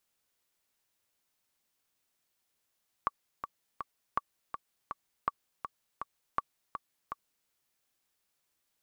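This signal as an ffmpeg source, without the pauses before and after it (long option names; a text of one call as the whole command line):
ffmpeg -f lavfi -i "aevalsrc='pow(10,(-15-8.5*gte(mod(t,3*60/163),60/163))/20)*sin(2*PI*1140*mod(t,60/163))*exp(-6.91*mod(t,60/163)/0.03)':duration=4.41:sample_rate=44100" out.wav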